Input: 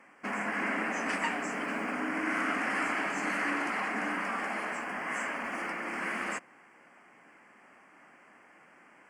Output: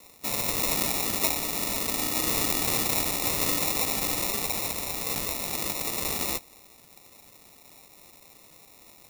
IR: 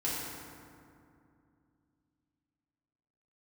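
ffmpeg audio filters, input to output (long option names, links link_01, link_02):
-filter_complex "[0:a]asettb=1/sr,asplit=3[link_01][link_02][link_03];[link_01]atrim=end=4.254[link_04];[link_02]atrim=start=4.25:end=5.49,asetpts=PTS-STARTPTS,afade=type=in:duration=0.004:curve=qsin,afade=type=out:start_time=1.236:duration=0.004:curve=qsin,equalizer=frequency=390:width=2:gain=-12.5[link_05];[link_03]atrim=start=5.486[link_06];[link_04][link_05]acrossfade=duration=0.004:curve1=hsin:curve2=qsin[link_07];[link_07][link_06]acrossfade=duration=0.004:curve1=qsin:curve2=hsin,acrusher=samples=28:mix=1:aa=0.000001,crystalizer=i=8:c=0,volume=-2.5dB"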